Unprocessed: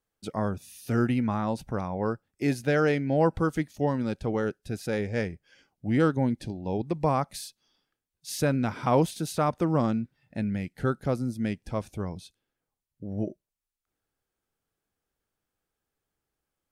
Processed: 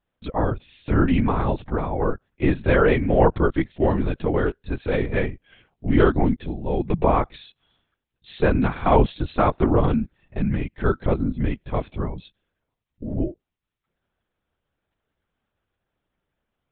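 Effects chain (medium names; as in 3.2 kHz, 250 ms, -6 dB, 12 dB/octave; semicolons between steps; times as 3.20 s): LPC vocoder at 8 kHz whisper; trim +6.5 dB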